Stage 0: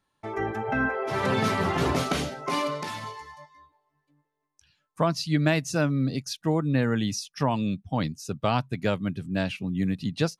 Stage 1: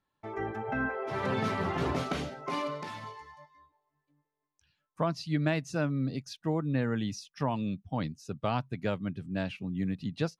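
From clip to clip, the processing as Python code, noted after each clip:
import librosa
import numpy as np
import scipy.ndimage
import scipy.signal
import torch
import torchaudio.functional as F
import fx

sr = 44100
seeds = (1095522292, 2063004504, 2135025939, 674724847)

y = fx.lowpass(x, sr, hz=3400.0, slope=6)
y = y * 10.0 ** (-5.5 / 20.0)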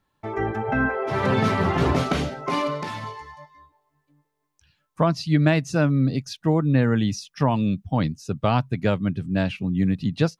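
y = fx.low_shelf(x, sr, hz=140.0, db=5.5)
y = y * 10.0 ** (8.5 / 20.0)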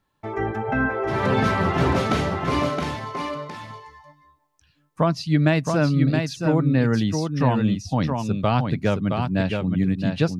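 y = x + 10.0 ** (-5.0 / 20.0) * np.pad(x, (int(669 * sr / 1000.0), 0))[:len(x)]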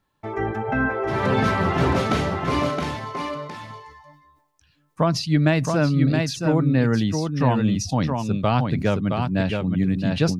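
y = fx.sustainer(x, sr, db_per_s=84.0)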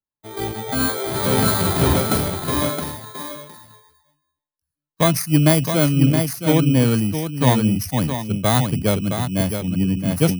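y = fx.bit_reversed(x, sr, seeds[0], block=16)
y = fx.band_widen(y, sr, depth_pct=70)
y = y * 10.0 ** (2.5 / 20.0)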